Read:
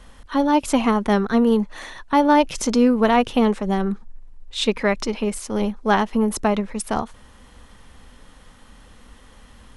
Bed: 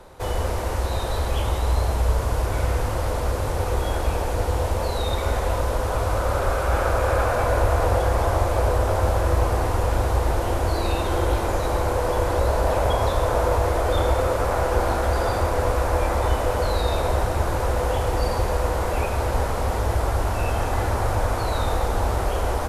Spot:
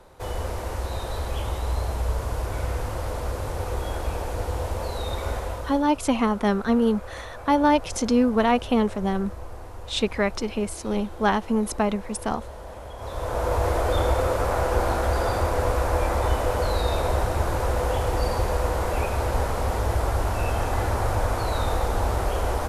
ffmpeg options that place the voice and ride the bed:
-filter_complex "[0:a]adelay=5350,volume=0.668[s0];[1:a]volume=3.98,afade=t=out:st=5.31:d=0.57:silence=0.211349,afade=t=in:st=12.96:d=0.72:silence=0.141254[s1];[s0][s1]amix=inputs=2:normalize=0"

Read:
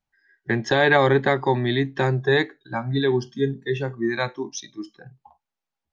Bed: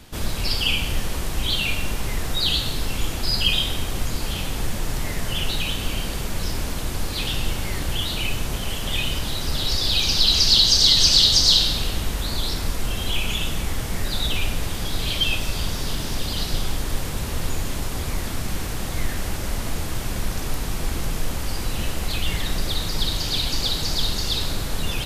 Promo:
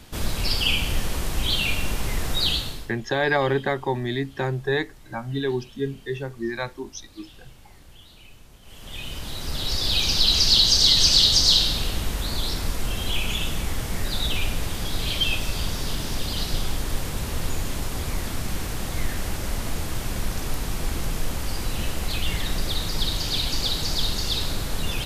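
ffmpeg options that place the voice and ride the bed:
-filter_complex "[0:a]adelay=2400,volume=0.596[s0];[1:a]volume=11.9,afade=t=out:st=2.43:d=0.49:silence=0.0707946,afade=t=in:st=8.62:d=1.32:silence=0.0794328[s1];[s0][s1]amix=inputs=2:normalize=0"

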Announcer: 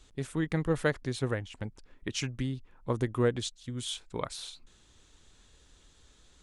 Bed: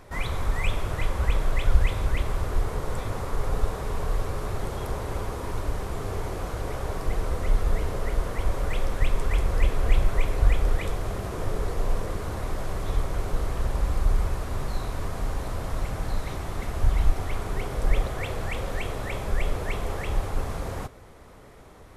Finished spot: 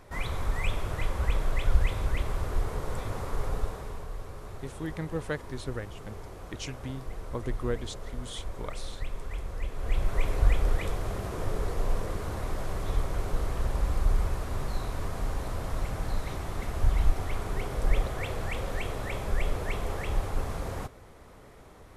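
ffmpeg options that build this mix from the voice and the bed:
-filter_complex "[0:a]adelay=4450,volume=0.562[s0];[1:a]volume=2,afade=t=out:st=3.4:d=0.68:silence=0.375837,afade=t=in:st=9.72:d=0.57:silence=0.334965[s1];[s0][s1]amix=inputs=2:normalize=0"

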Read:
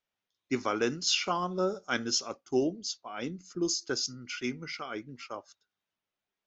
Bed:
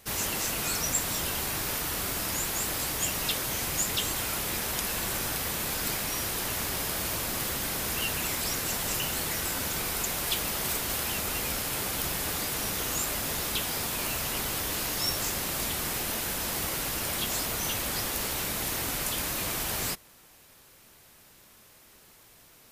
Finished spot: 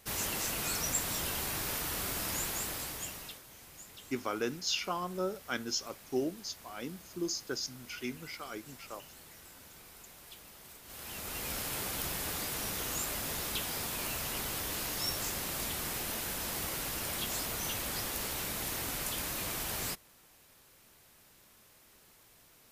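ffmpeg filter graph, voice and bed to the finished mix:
-filter_complex "[0:a]adelay=3600,volume=0.562[s0];[1:a]volume=4.22,afade=t=out:st=2.42:d=1:silence=0.125893,afade=t=in:st=10.83:d=0.78:silence=0.141254[s1];[s0][s1]amix=inputs=2:normalize=0"

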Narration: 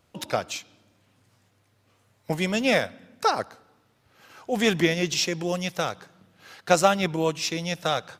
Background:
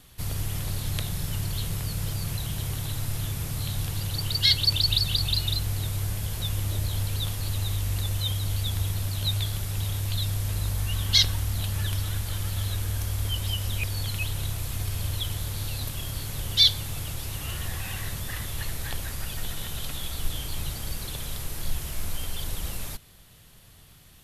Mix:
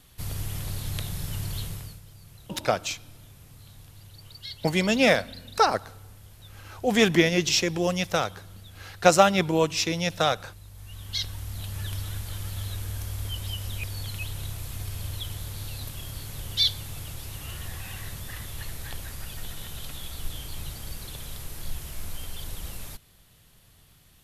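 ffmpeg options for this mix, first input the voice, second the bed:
-filter_complex "[0:a]adelay=2350,volume=1.26[s0];[1:a]volume=3.98,afade=t=out:st=1.58:d=0.43:silence=0.149624,afade=t=in:st=10.71:d=1.25:silence=0.188365[s1];[s0][s1]amix=inputs=2:normalize=0"

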